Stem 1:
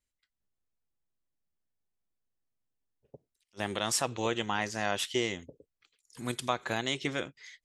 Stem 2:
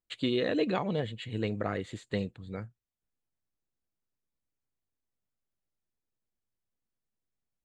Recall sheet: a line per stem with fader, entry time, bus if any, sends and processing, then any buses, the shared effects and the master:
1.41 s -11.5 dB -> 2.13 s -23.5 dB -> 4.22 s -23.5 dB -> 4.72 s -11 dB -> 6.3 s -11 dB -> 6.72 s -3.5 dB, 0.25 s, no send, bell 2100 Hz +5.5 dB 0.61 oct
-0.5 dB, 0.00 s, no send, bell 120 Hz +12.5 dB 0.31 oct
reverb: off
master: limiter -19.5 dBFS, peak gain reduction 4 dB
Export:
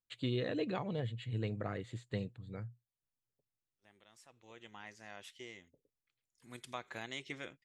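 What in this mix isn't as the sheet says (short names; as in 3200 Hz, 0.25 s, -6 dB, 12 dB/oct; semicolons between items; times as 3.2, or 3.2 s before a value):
stem 1 -11.5 dB -> -21.5 dB; stem 2 -0.5 dB -> -8.0 dB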